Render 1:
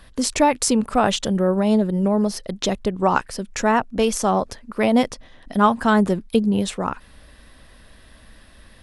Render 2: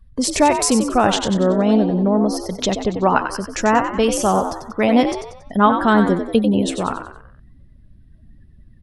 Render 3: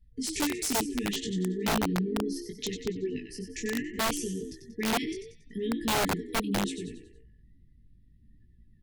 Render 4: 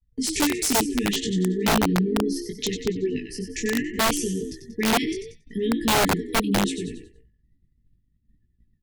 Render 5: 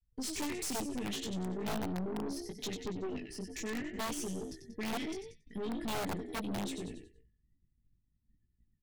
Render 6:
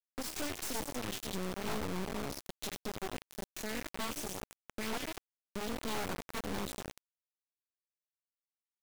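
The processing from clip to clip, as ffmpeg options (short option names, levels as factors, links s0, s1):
-filter_complex "[0:a]afftdn=nr=28:nf=-41,asplit=2[s0][s1];[s1]asplit=5[s2][s3][s4][s5][s6];[s2]adelay=93,afreqshift=67,volume=0.398[s7];[s3]adelay=186,afreqshift=134,volume=0.172[s8];[s4]adelay=279,afreqshift=201,volume=0.0733[s9];[s5]adelay=372,afreqshift=268,volume=0.0316[s10];[s6]adelay=465,afreqshift=335,volume=0.0136[s11];[s7][s8][s9][s10][s11]amix=inputs=5:normalize=0[s12];[s0][s12]amix=inputs=2:normalize=0,volume=1.26"
-af "flanger=delay=17:depth=5.3:speed=0.71,afftfilt=real='re*(1-between(b*sr/4096,470,1700))':imag='im*(1-between(b*sr/4096,470,1700))':win_size=4096:overlap=0.75,aeval=exprs='(mod(4.73*val(0)+1,2)-1)/4.73':c=same,volume=0.376"
-af "agate=range=0.0224:threshold=0.00501:ratio=3:detection=peak,volume=2.24"
-af "aeval=exprs='(tanh(22.4*val(0)+0.5)-tanh(0.5))/22.4':c=same,volume=0.422"
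-af "acompressor=threshold=0.00251:ratio=2,acrusher=bits=6:mix=0:aa=0.000001,volume=2"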